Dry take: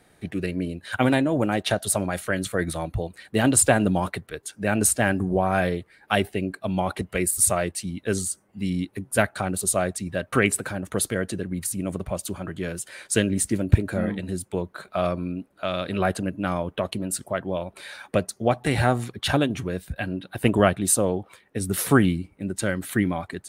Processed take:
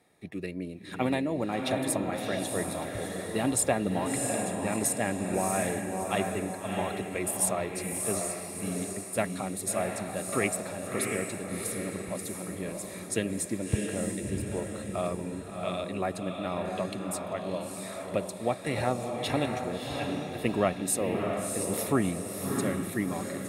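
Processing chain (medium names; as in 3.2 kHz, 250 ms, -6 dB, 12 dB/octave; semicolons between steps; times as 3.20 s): comb of notches 1.5 kHz; echo that smears into a reverb 665 ms, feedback 46%, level -3 dB; trim -7 dB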